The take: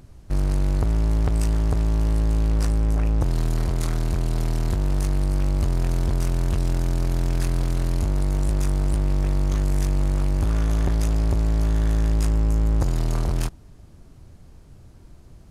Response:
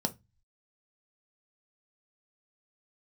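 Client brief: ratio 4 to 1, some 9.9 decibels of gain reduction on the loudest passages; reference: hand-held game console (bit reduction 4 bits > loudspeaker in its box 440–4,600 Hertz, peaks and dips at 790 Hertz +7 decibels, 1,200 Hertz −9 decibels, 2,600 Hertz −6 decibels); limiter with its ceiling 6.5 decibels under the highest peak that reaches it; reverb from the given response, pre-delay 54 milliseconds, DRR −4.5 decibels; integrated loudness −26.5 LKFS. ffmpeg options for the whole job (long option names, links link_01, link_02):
-filter_complex "[0:a]acompressor=threshold=-29dB:ratio=4,alimiter=level_in=1.5dB:limit=-24dB:level=0:latency=1,volume=-1.5dB,asplit=2[link_01][link_02];[1:a]atrim=start_sample=2205,adelay=54[link_03];[link_02][link_03]afir=irnorm=-1:irlink=0,volume=0dB[link_04];[link_01][link_04]amix=inputs=2:normalize=0,acrusher=bits=3:mix=0:aa=0.000001,highpass=440,equalizer=frequency=790:width_type=q:width=4:gain=7,equalizer=frequency=1200:width_type=q:width=4:gain=-9,equalizer=frequency=2600:width_type=q:width=4:gain=-6,lowpass=frequency=4600:width=0.5412,lowpass=frequency=4600:width=1.3066,volume=5.5dB"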